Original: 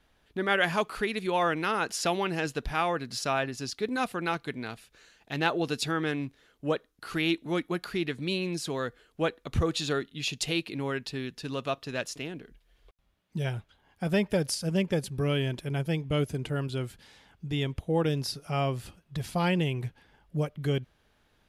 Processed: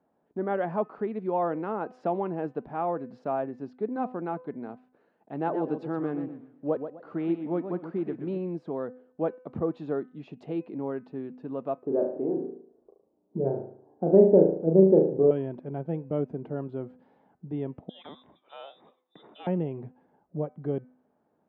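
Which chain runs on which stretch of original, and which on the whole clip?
5.34–8.38 block floating point 5-bit + warbling echo 0.125 s, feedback 31%, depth 171 cents, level -9 dB
11.82–15.31 Chebyshev low-pass 840 Hz + bell 380 Hz +12.5 dB 0.96 oct + flutter echo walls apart 6.3 m, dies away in 0.55 s
17.89–19.47 bell 1900 Hz +2.5 dB 0.33 oct + inverted band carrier 3700 Hz
whole clip: Chebyshev band-pass 200–790 Hz, order 2; de-hum 253 Hz, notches 11; gain +1.5 dB

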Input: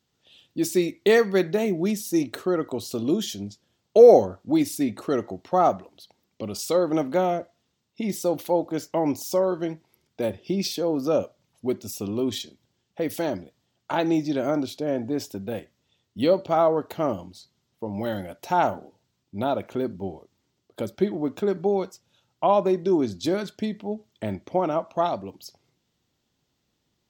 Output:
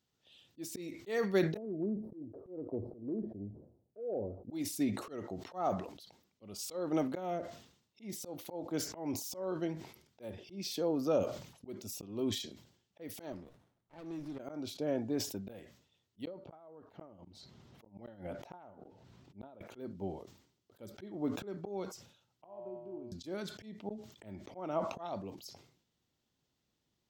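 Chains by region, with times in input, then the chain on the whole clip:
1.57–4.52 inverse Chebyshev low-pass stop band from 2700 Hz, stop band 70 dB + bell 180 Hz -5 dB 0.44 oct + compressor, threshold -22 dBFS
13.32–14.39 HPF 41 Hz + compressor 2.5:1, threshold -36 dBFS + running maximum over 17 samples
16.25–19.61 LPF 1500 Hz 6 dB/oct + flipped gate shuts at -19 dBFS, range -39 dB + fast leveller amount 50%
22.44–23.12 running mean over 24 samples + upward compressor, threshold -24 dBFS + resonator 120 Hz, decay 1.6 s, mix 90%
whole clip: auto swell 0.253 s; sustainer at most 90 dB/s; gain -8 dB

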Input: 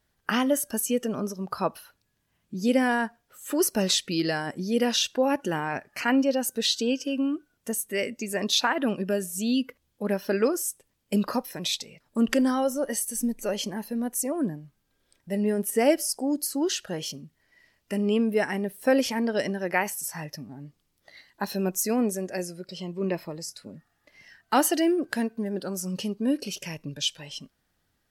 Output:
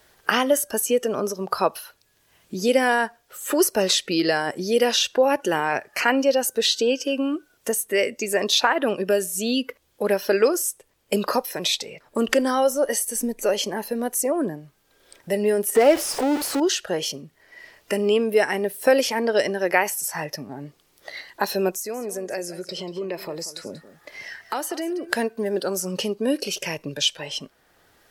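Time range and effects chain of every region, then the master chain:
15.75–16.6 zero-crossing step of -26 dBFS + high shelf 4300 Hz -11 dB
21.74–25.13 notch 2800 Hz, Q 20 + compressor 3:1, threshold -38 dBFS + echo 0.186 s -16 dB
whole clip: resonant low shelf 310 Hz -7 dB, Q 1.5; three-band squash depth 40%; gain +6 dB

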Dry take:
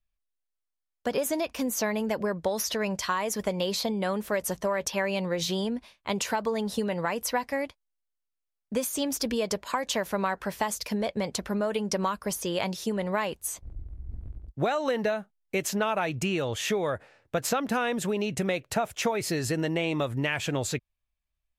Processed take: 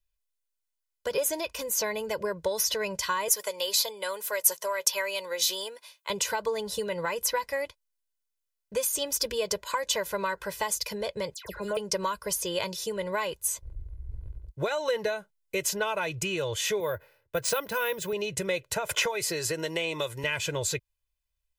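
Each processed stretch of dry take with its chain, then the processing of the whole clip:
3.28–6.1 HPF 570 Hz + high shelf 7500 Hz +10.5 dB
11.34–11.77 de-esser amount 95% + dispersion lows, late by 0.107 s, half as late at 2100 Hz
16.8–18.13 careless resampling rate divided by 3×, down filtered, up hold + three-band expander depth 40%
18.89–20.24 low shelf 210 Hz -9.5 dB + three-band squash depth 100%
whole clip: high shelf 2900 Hz +7.5 dB; comb 2 ms, depth 86%; gain -5 dB

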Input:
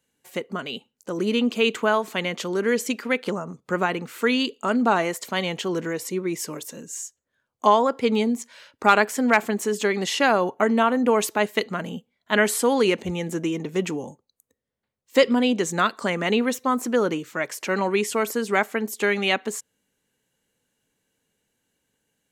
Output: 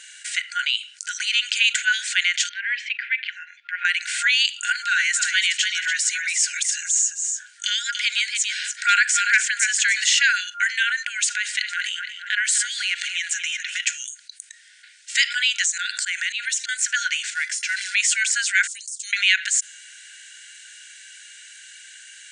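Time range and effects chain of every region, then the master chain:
2.49–3.85 LPF 2400 Hz 24 dB/oct + fixed phaser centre 530 Hz, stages 4
4.7–10.07 dispersion lows, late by 0.131 s, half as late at 330 Hz + echo 0.288 s -10.5 dB
11.03–13.8 darkening echo 0.231 s, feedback 33%, low-pass 4100 Hz, level -17 dB + compressor 4:1, threshold -27 dBFS
15.64–16.69 auto swell 0.149 s + tilt +2.5 dB/oct + compressor 4:1, threshold -35 dBFS
17.3–17.95 short-mantissa float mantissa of 2-bit + resonator 680 Hz, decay 0.15 s, mix 70%
18.67–19.13 inverse Chebyshev band-stop 220–1200 Hz, stop band 80 dB + compressor, threshold -49 dBFS
whole clip: FFT band-pass 1400–9600 Hz; dynamic EQ 6900 Hz, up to +6 dB, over -48 dBFS, Q 3.4; fast leveller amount 50%; gain +4 dB

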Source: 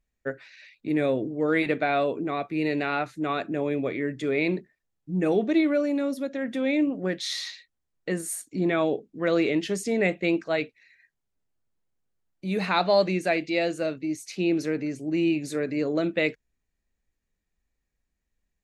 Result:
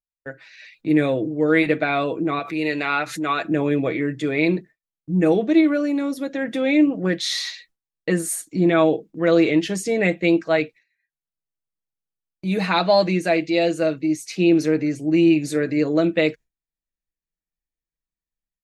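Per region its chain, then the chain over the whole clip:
2.39–3.45 low shelf 420 Hz -11 dB + backwards sustainer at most 81 dB/s
whole clip: comb 6.2 ms, depth 50%; AGC gain up to 10.5 dB; gate with hold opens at -35 dBFS; gain -4 dB

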